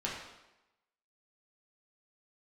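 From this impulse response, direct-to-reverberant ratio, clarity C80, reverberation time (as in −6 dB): −5.5 dB, 5.0 dB, 0.95 s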